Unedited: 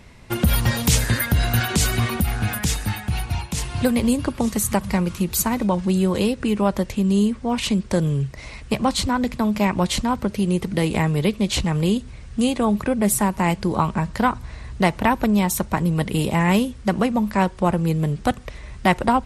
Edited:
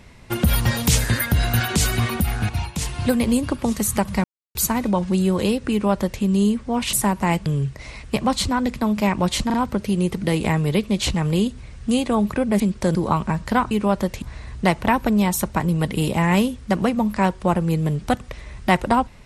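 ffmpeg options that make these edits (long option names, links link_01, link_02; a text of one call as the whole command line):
ffmpeg -i in.wav -filter_complex "[0:a]asplit=12[link_01][link_02][link_03][link_04][link_05][link_06][link_07][link_08][link_09][link_10][link_11][link_12];[link_01]atrim=end=2.492[link_13];[link_02]atrim=start=3.248:end=5,asetpts=PTS-STARTPTS,afade=type=out:start_time=1.748:duration=0.004:curve=hsin[link_14];[link_03]atrim=start=5:end=5.31,asetpts=PTS-STARTPTS,volume=0[link_15];[link_04]atrim=start=5.31:end=7.692,asetpts=PTS-STARTPTS,afade=type=in:duration=0.004:curve=hsin[link_16];[link_05]atrim=start=13.098:end=13.632[link_17];[link_06]atrim=start=8.038:end=10.082[link_18];[link_07]atrim=start=10.038:end=10.082[link_19];[link_08]atrim=start=10.038:end=13.102[link_20];[link_09]atrim=start=7.688:end=8.042[link_21];[link_10]atrim=start=13.628:end=14.392[link_22];[link_11]atrim=start=6.468:end=6.982[link_23];[link_12]atrim=start=14.388[link_24];[link_14][link_15][link_16]concat=n=3:v=0:a=1[link_25];[link_13][link_25]acrossfade=duration=0.004:curve1=hsin:curve2=hsin[link_26];[link_26][link_17]acrossfade=duration=0.004:curve1=hsin:curve2=hsin[link_27];[link_27][link_18]acrossfade=duration=0.004:curve1=hsin:curve2=hsin[link_28];[link_28][link_19]acrossfade=duration=0.004:curve1=hsin:curve2=hsin[link_29];[link_29][link_20]acrossfade=duration=0.004:curve1=hsin:curve2=hsin[link_30];[link_30][link_21]acrossfade=duration=0.004:curve1=hsin:curve2=hsin[link_31];[link_31][link_22]acrossfade=duration=0.004:curve1=hsin:curve2=hsin[link_32];[link_32][link_23]acrossfade=duration=0.004:curve1=hsin:curve2=hsin[link_33];[link_33][link_24]acrossfade=duration=0.004:curve1=hsin:curve2=hsin" out.wav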